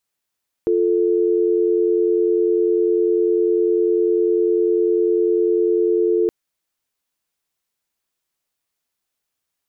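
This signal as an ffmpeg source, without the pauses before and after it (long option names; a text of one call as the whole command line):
ffmpeg -f lavfi -i "aevalsrc='0.141*(sin(2*PI*350*t)+sin(2*PI*440*t))':duration=5.62:sample_rate=44100" out.wav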